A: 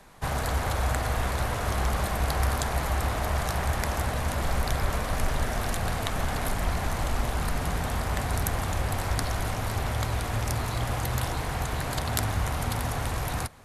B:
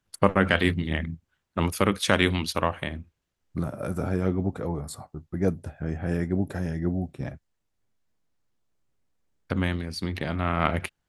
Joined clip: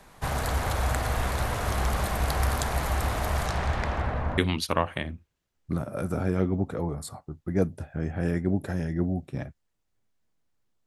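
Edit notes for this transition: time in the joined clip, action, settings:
A
3.46–4.38 s: low-pass 7.6 kHz -> 1.2 kHz
4.38 s: go over to B from 2.24 s

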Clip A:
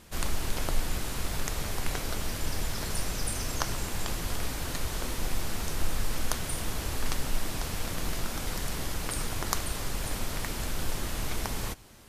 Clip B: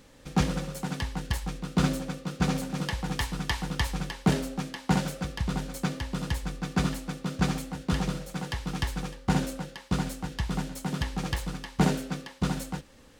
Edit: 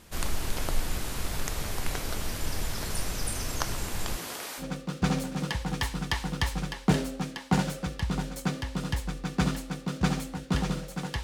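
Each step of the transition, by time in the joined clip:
clip A
4.16–4.65 s: high-pass 180 Hz -> 720 Hz
4.61 s: go over to clip B from 1.99 s, crossfade 0.08 s

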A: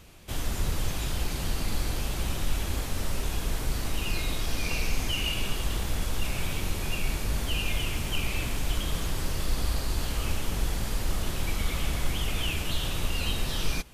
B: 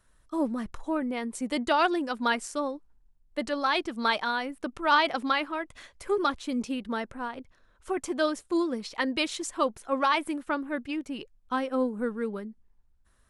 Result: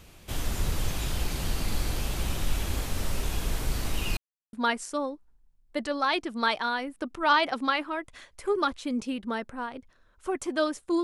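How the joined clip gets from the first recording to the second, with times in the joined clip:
A
4.17–4.53 s: mute
4.53 s: go over to B from 2.15 s

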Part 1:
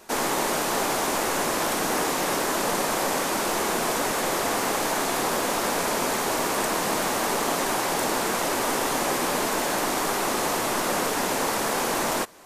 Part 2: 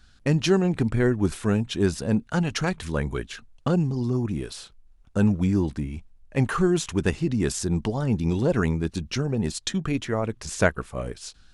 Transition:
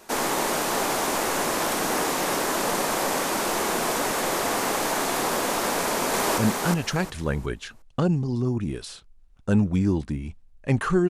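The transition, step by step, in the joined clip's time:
part 1
5.77–6.38 s: echo throw 360 ms, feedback 25%, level -2.5 dB
6.38 s: go over to part 2 from 2.06 s

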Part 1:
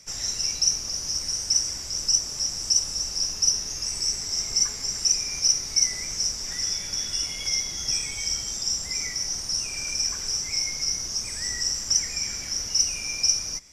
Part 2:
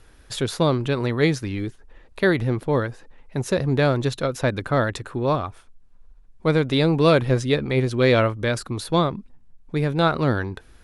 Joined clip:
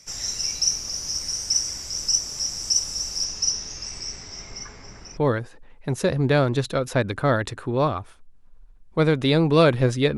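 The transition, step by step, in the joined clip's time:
part 1
3.24–5.17 s: low-pass 8.1 kHz -> 1.5 kHz
5.17 s: go over to part 2 from 2.65 s

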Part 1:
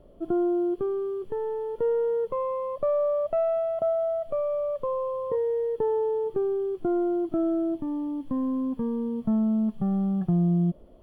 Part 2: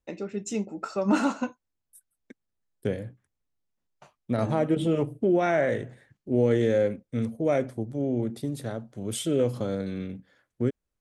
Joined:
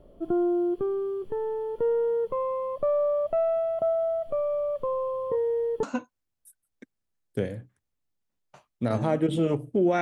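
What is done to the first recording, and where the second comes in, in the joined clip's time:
part 1
5.83 s: go over to part 2 from 1.31 s

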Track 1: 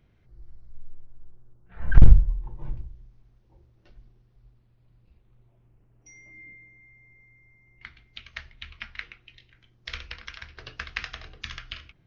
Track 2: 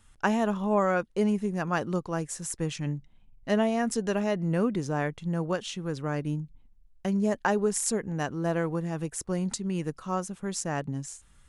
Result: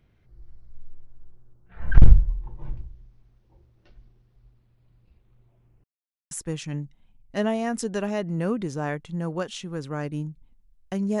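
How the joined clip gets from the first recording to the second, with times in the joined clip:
track 1
5.84–6.31 s: mute
6.31 s: go over to track 2 from 2.44 s

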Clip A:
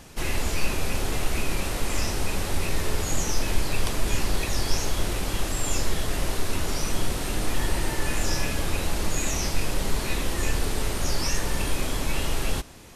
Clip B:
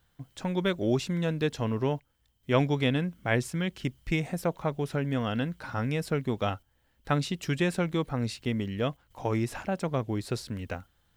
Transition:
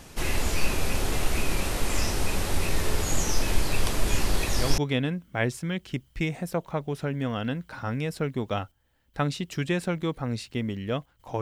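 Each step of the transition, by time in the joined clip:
clip A
4.02 s: add clip B from 1.93 s 0.76 s -8 dB
4.78 s: go over to clip B from 2.69 s

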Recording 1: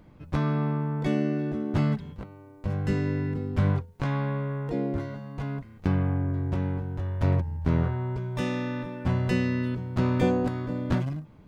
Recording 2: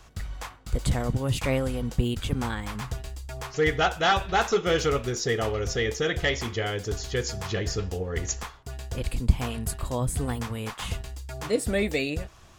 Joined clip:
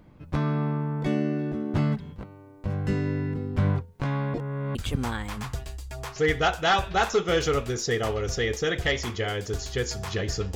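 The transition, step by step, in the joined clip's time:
recording 1
4.34–4.75 s: reverse
4.75 s: go over to recording 2 from 2.13 s

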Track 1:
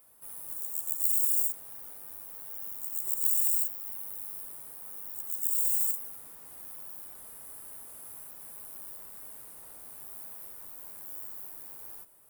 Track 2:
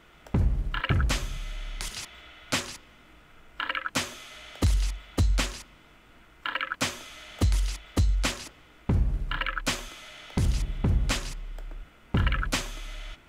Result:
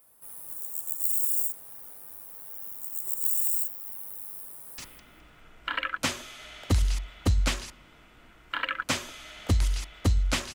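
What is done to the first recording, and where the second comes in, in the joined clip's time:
track 1
4.45–4.78 s: echo throw 210 ms, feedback 20%, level -7 dB
4.78 s: go over to track 2 from 2.70 s

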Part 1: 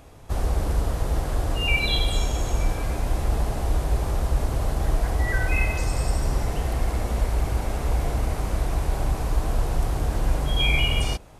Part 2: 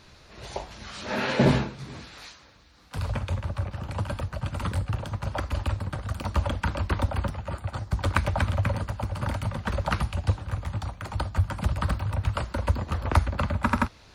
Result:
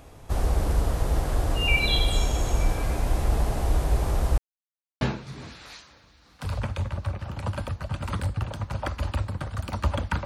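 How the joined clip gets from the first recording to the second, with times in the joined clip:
part 1
4.38–5.01 s: mute
5.01 s: go over to part 2 from 1.53 s

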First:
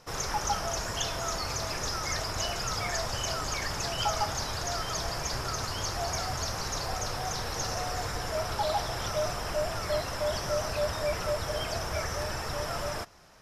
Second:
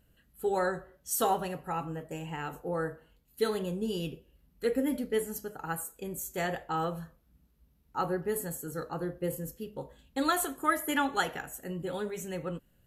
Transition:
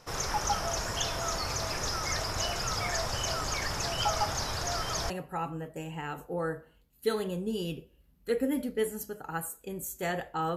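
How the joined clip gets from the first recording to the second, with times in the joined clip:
first
5.10 s: go over to second from 1.45 s

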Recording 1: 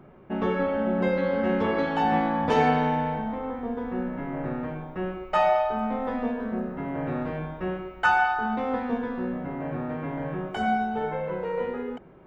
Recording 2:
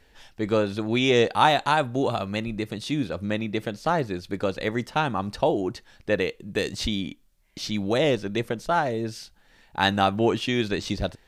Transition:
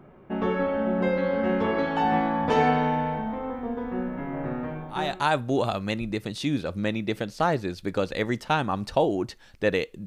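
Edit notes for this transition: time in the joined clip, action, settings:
recording 1
5.12 s: go over to recording 2 from 1.58 s, crossfade 0.50 s linear

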